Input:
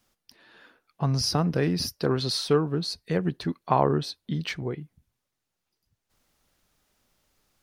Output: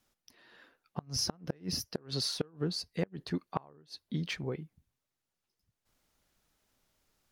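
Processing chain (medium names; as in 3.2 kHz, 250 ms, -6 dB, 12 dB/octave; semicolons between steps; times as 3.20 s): inverted gate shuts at -14 dBFS, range -30 dB; speed mistake 24 fps film run at 25 fps; trim -5 dB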